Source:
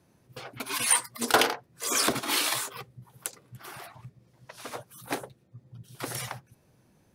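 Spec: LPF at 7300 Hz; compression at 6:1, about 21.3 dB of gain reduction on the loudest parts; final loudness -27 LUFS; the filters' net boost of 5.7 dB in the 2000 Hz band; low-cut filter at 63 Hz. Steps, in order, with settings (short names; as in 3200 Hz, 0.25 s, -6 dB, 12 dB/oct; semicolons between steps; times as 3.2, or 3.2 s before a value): HPF 63 Hz; LPF 7300 Hz; bell 2000 Hz +7.5 dB; compressor 6:1, threshold -39 dBFS; gain +15.5 dB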